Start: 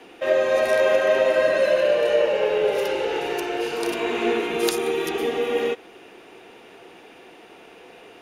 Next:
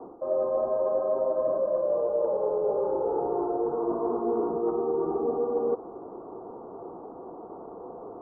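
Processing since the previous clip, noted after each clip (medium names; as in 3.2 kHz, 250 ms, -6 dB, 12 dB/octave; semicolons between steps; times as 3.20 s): steep low-pass 1.2 kHz 72 dB/octave; reverse; compression 5:1, threshold -31 dBFS, peak gain reduction 14.5 dB; reverse; trim +6 dB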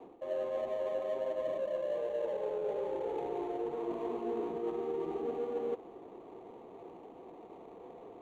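median filter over 25 samples; trim -8.5 dB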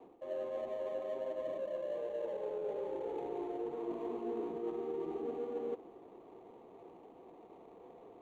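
dynamic bell 290 Hz, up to +4 dB, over -47 dBFS, Q 1.4; trim -5 dB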